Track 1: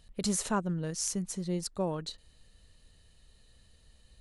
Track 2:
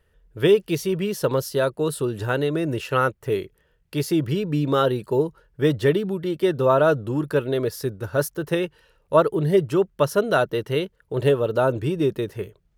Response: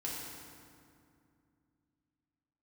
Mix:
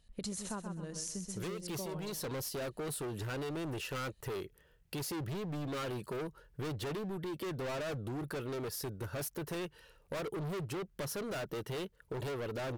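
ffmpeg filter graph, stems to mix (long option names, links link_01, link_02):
-filter_complex "[0:a]agate=range=-7dB:threshold=-53dB:ratio=16:detection=peak,volume=-1.5dB,asplit=2[link_01][link_02];[link_02]volume=-7.5dB[link_03];[1:a]highshelf=frequency=4800:gain=5,asoftclip=type=hard:threshold=-27.5dB,adelay=1000,volume=-2.5dB[link_04];[link_03]aecho=0:1:129|258|387|516:1|0.3|0.09|0.027[link_05];[link_01][link_04][link_05]amix=inputs=3:normalize=0,acompressor=threshold=-38dB:ratio=6"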